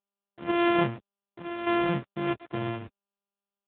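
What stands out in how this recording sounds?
a buzz of ramps at a fixed pitch in blocks of 128 samples; chopped level 0.6 Hz, depth 65%, duty 85%; a quantiser's noise floor 8-bit, dither none; AMR-NB

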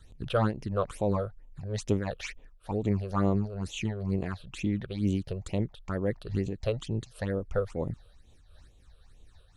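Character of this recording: phasing stages 8, 2.2 Hz, lowest notch 250–1600 Hz; noise-modulated level

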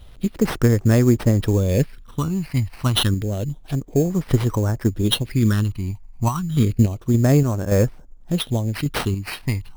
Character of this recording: phasing stages 8, 0.29 Hz, lowest notch 440–4600 Hz; aliases and images of a low sample rate 7000 Hz, jitter 0%; random-step tremolo

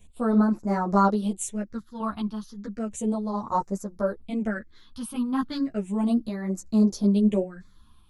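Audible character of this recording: phasing stages 6, 0.34 Hz, lowest notch 520–3100 Hz; random-step tremolo; a shimmering, thickened sound

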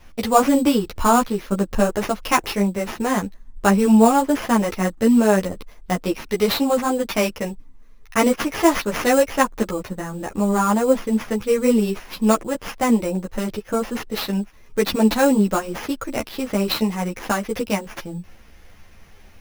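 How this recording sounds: aliases and images of a low sample rate 8100 Hz, jitter 0%; a shimmering, thickened sound

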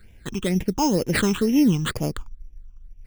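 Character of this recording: aliases and images of a low sample rate 5800 Hz, jitter 0%; phasing stages 8, 2.1 Hz, lowest notch 540–1300 Hz

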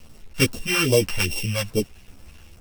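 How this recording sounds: a buzz of ramps at a fixed pitch in blocks of 16 samples; phasing stages 2, 2.4 Hz, lowest notch 280–1600 Hz; a quantiser's noise floor 8-bit, dither none; a shimmering, thickened sound

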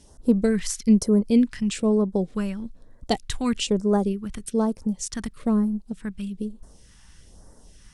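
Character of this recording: phasing stages 2, 1.1 Hz, lowest notch 480–2700 Hz

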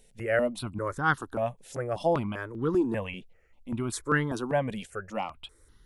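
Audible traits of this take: notches that jump at a steady rate 5.1 Hz 310–2400 Hz

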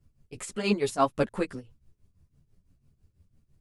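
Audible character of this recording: tremolo triangle 6 Hz, depth 85%; a shimmering, thickened sound

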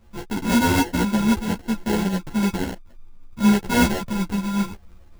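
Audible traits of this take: a buzz of ramps at a fixed pitch in blocks of 32 samples; phasing stages 8, 3.8 Hz, lowest notch 530–1300 Hz; aliases and images of a low sample rate 1200 Hz, jitter 0%; a shimmering, thickened sound

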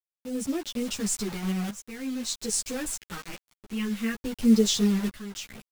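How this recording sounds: phasing stages 2, 0.5 Hz, lowest notch 550–1100 Hz; a quantiser's noise floor 6-bit, dither none; tremolo saw up 0.59 Hz, depth 80%; a shimmering, thickened sound

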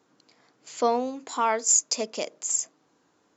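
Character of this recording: noise floor -68 dBFS; spectral tilt 0.0 dB/oct

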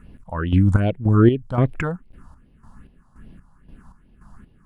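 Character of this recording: phasing stages 4, 2.5 Hz, lowest notch 380–1300 Hz; chopped level 1.9 Hz, depth 65%, duty 45%

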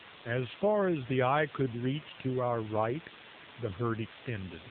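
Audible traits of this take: a quantiser's noise floor 6-bit, dither triangular; AMR-NB

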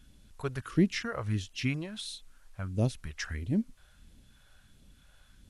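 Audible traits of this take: phasing stages 2, 1.5 Hz, lowest notch 220–1300 Hz; a quantiser's noise floor 12-bit, dither triangular; AC-3

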